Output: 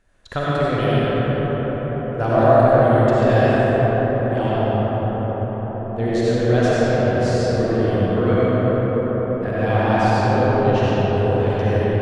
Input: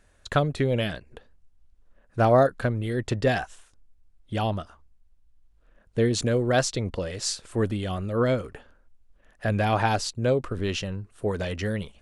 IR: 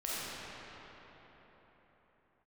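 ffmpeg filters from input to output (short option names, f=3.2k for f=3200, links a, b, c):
-filter_complex "[0:a]asetnsamples=n=441:p=0,asendcmd='4.35 equalizer g -12',equalizer=f=8.7k:t=o:w=1.7:g=-5.5[a];[1:a]atrim=start_sample=2205,asetrate=22932,aresample=44100[b];[a][b]afir=irnorm=-1:irlink=0,volume=-2.5dB"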